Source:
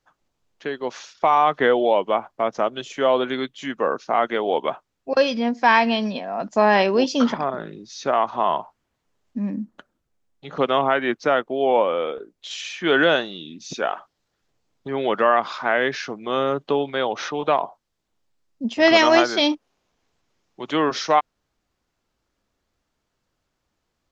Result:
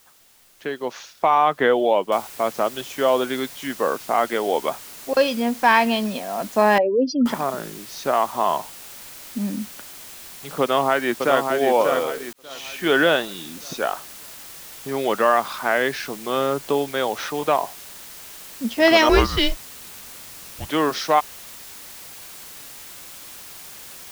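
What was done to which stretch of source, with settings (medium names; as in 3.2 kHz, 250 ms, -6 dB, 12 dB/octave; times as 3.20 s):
2.12 s: noise floor step -55 dB -40 dB
6.78–7.26 s: spectral contrast enhancement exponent 2.7
10.61–11.44 s: echo throw 590 ms, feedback 40%, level -5 dB
12.33–12.79 s: fade in
19.09–20.70 s: frequency shift -280 Hz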